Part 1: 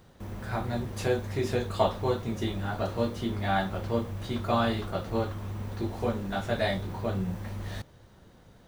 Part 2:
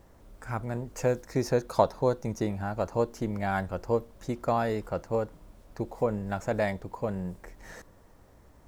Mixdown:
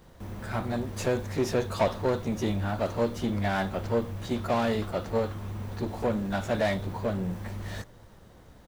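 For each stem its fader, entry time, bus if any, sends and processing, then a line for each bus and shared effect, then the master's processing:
0.0 dB, 0.00 s, no send, hard clipping −28.5 dBFS, distortion −7 dB
+0.5 dB, 20 ms, no send, no processing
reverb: not used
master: soft clipping −16.5 dBFS, distortion −16 dB

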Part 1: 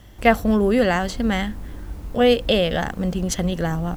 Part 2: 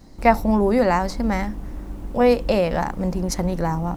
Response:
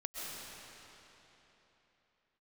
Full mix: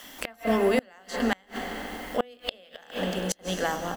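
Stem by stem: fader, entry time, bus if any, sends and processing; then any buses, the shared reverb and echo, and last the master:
−1.0 dB, 0.00 s, send −7.5 dB, high-pass filter 510 Hz 12 dB per octave; high-shelf EQ 12,000 Hz +3 dB
−20.0 dB, 23 ms, polarity flipped, send −10 dB, hollow resonant body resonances 260/3,100 Hz, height 17 dB, ringing for 45 ms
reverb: on, RT60 3.7 s, pre-delay 90 ms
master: hum removal 175.5 Hz, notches 27; gate with flip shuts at −12 dBFS, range −32 dB; one half of a high-frequency compander encoder only

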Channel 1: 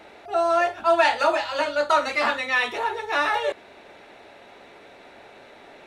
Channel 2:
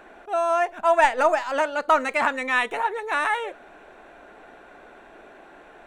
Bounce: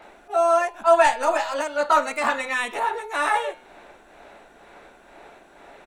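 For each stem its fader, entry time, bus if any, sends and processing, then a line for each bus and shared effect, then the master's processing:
−6.0 dB, 0.00 s, no send, parametric band 990 Hz +8.5 dB 2.3 octaves; tremolo along a rectified sine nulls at 2.1 Hz
−5.5 dB, 22 ms, polarity flipped, no send, bass and treble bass +6 dB, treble +12 dB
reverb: not used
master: hum removal 128.1 Hz, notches 36

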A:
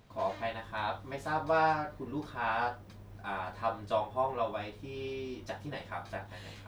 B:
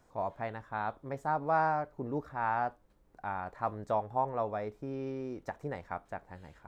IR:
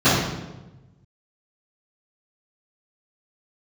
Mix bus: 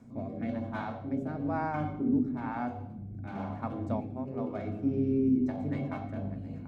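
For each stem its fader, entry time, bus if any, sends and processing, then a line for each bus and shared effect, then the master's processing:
−6.0 dB, 0.00 s, send −19 dB, adaptive Wiener filter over 25 samples; reverb reduction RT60 1.5 s; compressor whose output falls as the input rises −40 dBFS, ratio −0.5
+2.5 dB, 0.00 s, no send, automatic ducking −7 dB, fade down 0.30 s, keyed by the first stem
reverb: on, RT60 1.1 s, pre-delay 3 ms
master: rotating-speaker cabinet horn 1 Hz; hollow resonant body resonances 250/2,200 Hz, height 17 dB, ringing for 85 ms

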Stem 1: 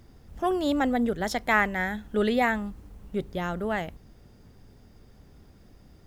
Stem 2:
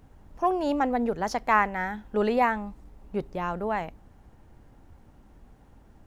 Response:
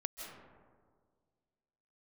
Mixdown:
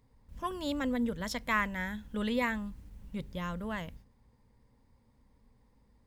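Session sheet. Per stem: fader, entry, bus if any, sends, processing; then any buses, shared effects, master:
−4.5 dB, 0.00 s, no send, noise gate −47 dBFS, range −14 dB; flat-topped bell 610 Hz −9 dB 2.4 octaves
−14.5 dB, 0.00 s, no send, EQ curve with evenly spaced ripples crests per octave 0.96, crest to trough 12 dB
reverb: not used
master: no processing

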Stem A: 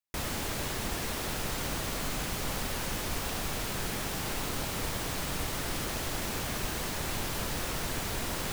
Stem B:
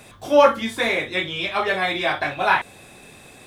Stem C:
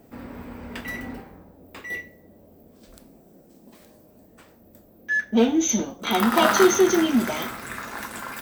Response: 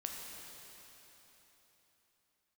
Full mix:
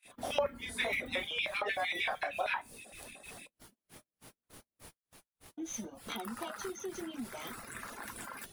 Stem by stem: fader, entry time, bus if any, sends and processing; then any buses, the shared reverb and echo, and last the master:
−13.5 dB, 0.00 s, bus A, no send, low-shelf EQ 61 Hz −7 dB; amplitude tremolo 3.3 Hz, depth 95%
−4.0 dB, 0.00 s, bus A, no send, auto-filter high-pass square 6.5 Hz 580–2,300 Hz
−9.0 dB, 0.05 s, muted 0:04.88–0:05.57, no bus, no send, downward compressor 10 to 1, threshold −28 dBFS, peak gain reduction 17 dB
bus A: 0.0 dB, tuned comb filter 57 Hz, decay 0.24 s, harmonics all, mix 60%; downward compressor 5 to 1, threshold −31 dBFS, peak gain reduction 19 dB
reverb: not used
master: noise gate −51 dBFS, range −27 dB; reverb reduction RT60 0.73 s; parametric band 9,900 Hz +12 dB 0.21 octaves

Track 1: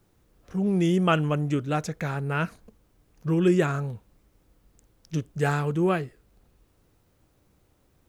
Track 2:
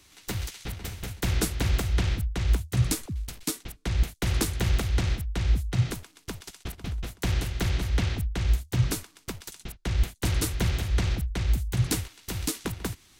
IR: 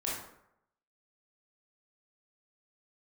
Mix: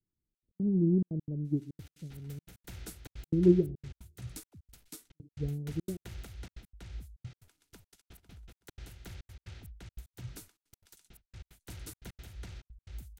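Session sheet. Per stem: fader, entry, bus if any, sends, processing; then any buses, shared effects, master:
+2.0 dB, 0.00 s, send −23 dB, inverse Chebyshev low-pass filter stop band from 1,200 Hz, stop band 60 dB; expander for the loud parts 2.5 to 1, over −37 dBFS
−20.0 dB, 1.45 s, no send, parametric band 1,400 Hz +2.5 dB 0.25 octaves; notch filter 1,100 Hz, Q 10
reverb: on, RT60 0.75 s, pre-delay 18 ms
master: high-shelf EQ 8,800 Hz +7 dB; gate pattern "xxxx.x.x" 176 BPM −60 dB

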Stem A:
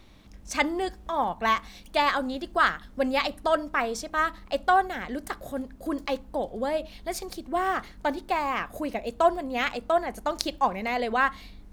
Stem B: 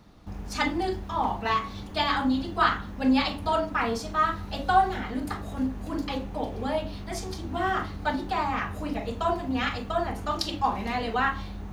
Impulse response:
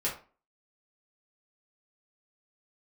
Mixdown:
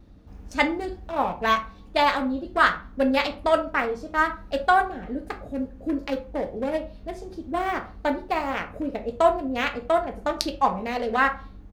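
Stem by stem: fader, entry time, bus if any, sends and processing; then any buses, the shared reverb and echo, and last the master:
0.0 dB, 0.00 s, send −7 dB, adaptive Wiener filter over 41 samples
−8.5 dB, 5 ms, send −17.5 dB, automatic ducking −11 dB, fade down 1.50 s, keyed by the first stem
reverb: on, RT60 0.35 s, pre-delay 4 ms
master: no processing

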